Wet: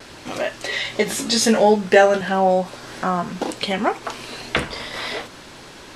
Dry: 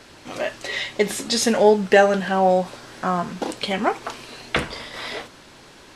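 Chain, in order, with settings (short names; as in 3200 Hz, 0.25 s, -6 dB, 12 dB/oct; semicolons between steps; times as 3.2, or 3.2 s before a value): 0.83–2.21 doubler 18 ms -3 dB; vibrato 0.45 Hz 12 cents; in parallel at +1.5 dB: compressor, threshold -33 dBFS, peak gain reduction 23 dB; on the sum: gain -1 dB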